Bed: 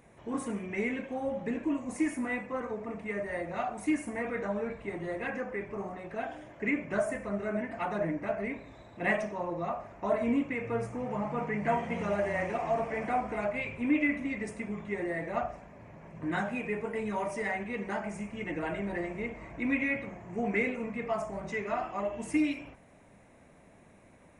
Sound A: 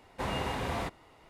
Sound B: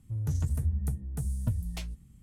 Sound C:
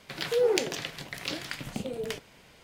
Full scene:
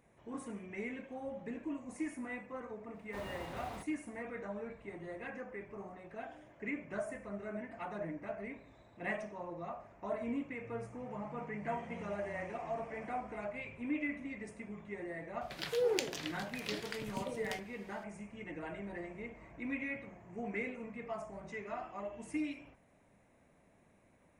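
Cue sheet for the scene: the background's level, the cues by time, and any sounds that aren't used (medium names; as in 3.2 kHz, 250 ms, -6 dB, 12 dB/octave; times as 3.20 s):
bed -9.5 dB
2.94 s: add A -13 dB + block-companded coder 5-bit
15.41 s: add C -7.5 dB
not used: B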